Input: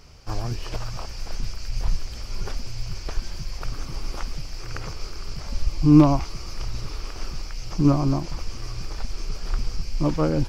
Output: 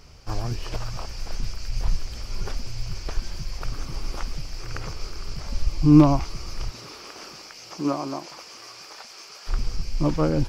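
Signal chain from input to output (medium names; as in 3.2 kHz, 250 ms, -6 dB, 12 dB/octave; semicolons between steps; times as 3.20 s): 6.69–9.47 s: high-pass 230 Hz -> 760 Hz 12 dB/octave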